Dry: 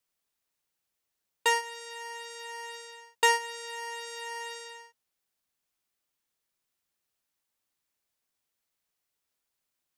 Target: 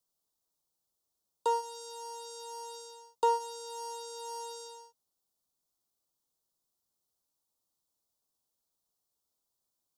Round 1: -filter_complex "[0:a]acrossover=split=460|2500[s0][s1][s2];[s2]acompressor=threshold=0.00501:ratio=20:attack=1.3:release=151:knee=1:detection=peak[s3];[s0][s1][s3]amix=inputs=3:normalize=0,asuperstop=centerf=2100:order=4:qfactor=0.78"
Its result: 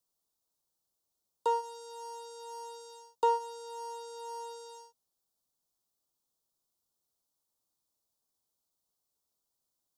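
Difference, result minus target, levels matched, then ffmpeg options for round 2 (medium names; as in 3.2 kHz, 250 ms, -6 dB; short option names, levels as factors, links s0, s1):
compression: peak gain reduction +7 dB
-filter_complex "[0:a]acrossover=split=460|2500[s0][s1][s2];[s2]acompressor=threshold=0.0119:ratio=20:attack=1.3:release=151:knee=1:detection=peak[s3];[s0][s1][s3]amix=inputs=3:normalize=0,asuperstop=centerf=2100:order=4:qfactor=0.78"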